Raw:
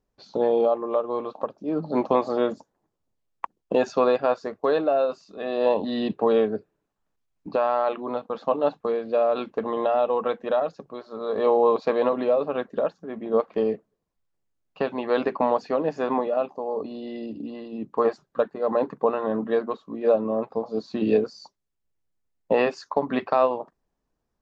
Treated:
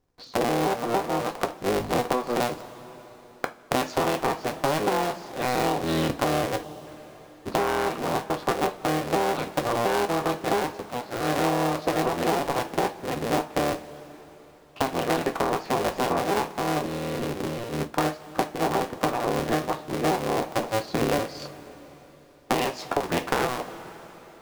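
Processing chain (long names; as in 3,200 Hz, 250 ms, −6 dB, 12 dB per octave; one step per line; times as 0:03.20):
sub-harmonics by changed cycles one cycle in 3, inverted
on a send at −6 dB: convolution reverb, pre-delay 3 ms
on the sum: downward compressor 10 to 1, threshold −24 dBFS, peak gain reduction 11 dB
gain on a spectral selection 0:06.63–0:06.87, 1,200–2,700 Hz −6 dB
level +3.5 dB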